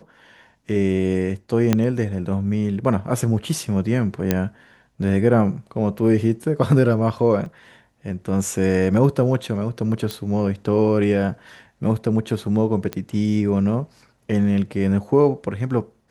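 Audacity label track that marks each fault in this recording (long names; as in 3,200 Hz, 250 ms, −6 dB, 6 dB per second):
1.730000	1.730000	click −4 dBFS
4.310000	4.310000	click −4 dBFS
7.460000	7.460000	drop-out 2.7 ms
10.110000	10.110000	click −11 dBFS
12.930000	12.930000	click −12 dBFS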